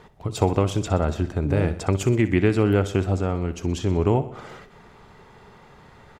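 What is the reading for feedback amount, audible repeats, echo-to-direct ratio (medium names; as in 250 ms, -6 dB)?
58%, 5, -12.5 dB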